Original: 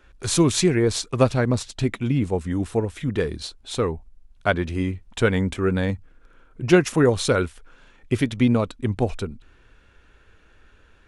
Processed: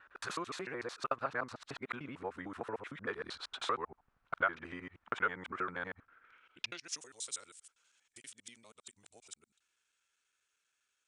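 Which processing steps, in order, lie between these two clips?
time reversed locally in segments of 77 ms; Doppler pass-by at 3.00 s, 14 m/s, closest 15 m; compression 6:1, threshold -36 dBFS, peak gain reduction 18 dB; band-pass sweep 1.3 kHz -> 7.9 kHz, 6.06–7.10 s; trim +14 dB

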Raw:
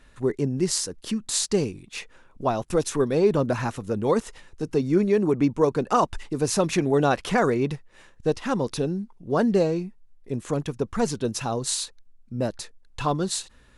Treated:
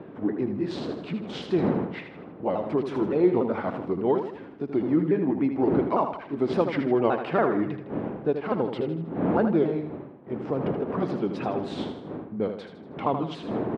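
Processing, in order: sawtooth pitch modulation -4.5 st, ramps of 284 ms; wind noise 300 Hz -32 dBFS; high-pass 220 Hz 12 dB/octave; treble shelf 7 kHz -8.5 dB; in parallel at -2 dB: compression, threshold -37 dBFS, peak gain reduction 20 dB; on the sum: distance through air 430 m; on a send: feedback delay 79 ms, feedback 46%, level -8 dB

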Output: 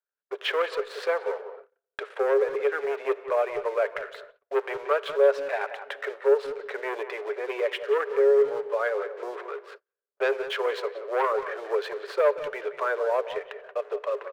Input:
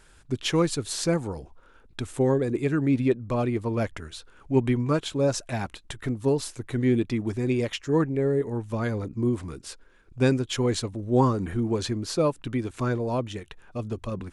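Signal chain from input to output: distance through air 400 m; waveshaping leveller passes 2; rippled Chebyshev high-pass 400 Hz, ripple 6 dB; speakerphone echo 180 ms, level -12 dB; simulated room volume 2800 m³, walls mixed, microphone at 0.34 m; in parallel at +1.5 dB: compression, threshold -38 dBFS, peak gain reduction 20.5 dB; on the sum: gate -44 dBFS, range -34 dB; tape noise reduction on one side only decoder only

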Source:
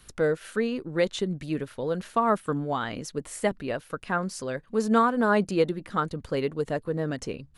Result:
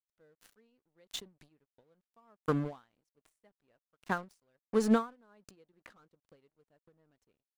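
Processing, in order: 5.73–6.15 s: overdrive pedal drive 24 dB, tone 1.2 kHz, clips at -13 dBFS; crossover distortion -39.5 dBFS; endings held to a fixed fall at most 190 dB/s

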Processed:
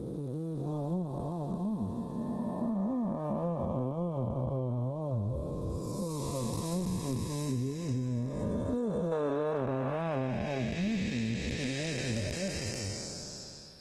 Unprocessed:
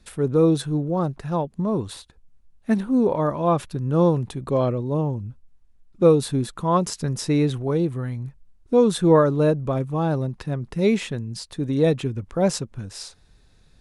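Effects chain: spectral blur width 1500 ms; high-pass 41 Hz 12 dB/octave; spectral noise reduction 13 dB; peaking EQ 1.7 kHz -10 dB 2.9 oct, from 9.12 s +3.5 dB; compression 6:1, threshold -38 dBFS, peak gain reduction 14.5 dB; hard clipper -29.5 dBFS, distortion -43 dB; trim +8.5 dB; Opus 16 kbps 48 kHz

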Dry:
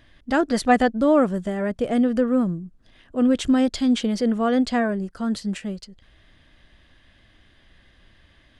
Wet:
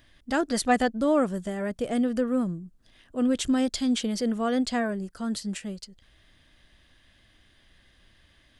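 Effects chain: treble shelf 5 kHz +11.5 dB; trim -5.5 dB

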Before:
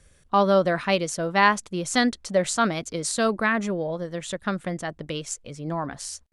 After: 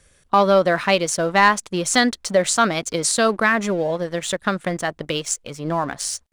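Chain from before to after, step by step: bass shelf 300 Hz -6.5 dB; waveshaping leveller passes 1; in parallel at 0 dB: compression, threshold -26 dBFS, peak gain reduction 14 dB

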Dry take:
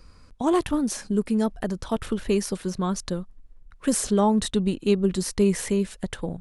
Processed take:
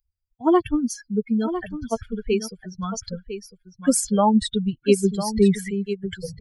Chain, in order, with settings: expander on every frequency bin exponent 3; delay 1003 ms -10.5 dB; trim +7.5 dB

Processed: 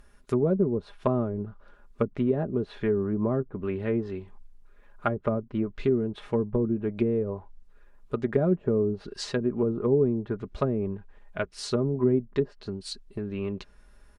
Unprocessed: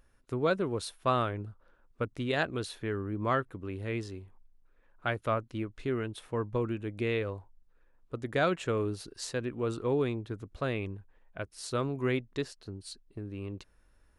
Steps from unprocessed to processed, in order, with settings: low-pass that closes with the level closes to 380 Hz, closed at -28 dBFS; comb 4.9 ms, depth 51%; trim +8 dB

